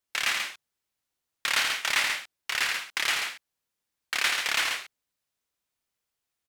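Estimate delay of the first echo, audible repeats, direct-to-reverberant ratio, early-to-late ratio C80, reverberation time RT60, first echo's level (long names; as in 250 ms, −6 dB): 84 ms, 2, no reverb audible, no reverb audible, no reverb audible, −6.0 dB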